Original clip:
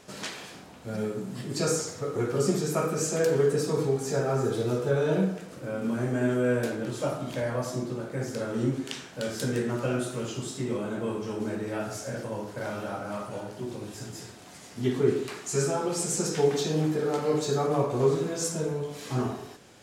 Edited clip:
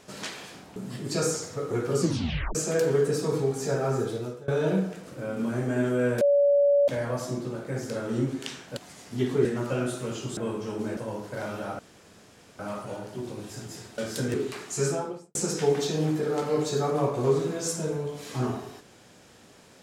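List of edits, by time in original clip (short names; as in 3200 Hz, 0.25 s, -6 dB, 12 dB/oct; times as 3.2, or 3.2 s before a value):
0.76–1.21 cut
2.45 tape stop 0.55 s
4.42–4.93 fade out, to -24 dB
6.66–7.33 bleep 570 Hz -17 dBFS
9.22–9.58 swap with 14.42–15.1
10.5–10.98 cut
11.58–12.21 cut
13.03 insert room tone 0.80 s
15.62–16.11 studio fade out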